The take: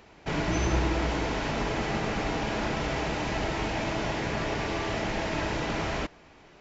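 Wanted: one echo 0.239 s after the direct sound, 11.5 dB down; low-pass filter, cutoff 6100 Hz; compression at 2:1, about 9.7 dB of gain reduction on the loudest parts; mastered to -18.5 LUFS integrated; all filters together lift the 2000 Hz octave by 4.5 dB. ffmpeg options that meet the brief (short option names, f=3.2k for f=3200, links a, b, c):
-af "lowpass=6.1k,equalizer=f=2k:t=o:g=5.5,acompressor=threshold=-39dB:ratio=2,aecho=1:1:239:0.266,volume=17dB"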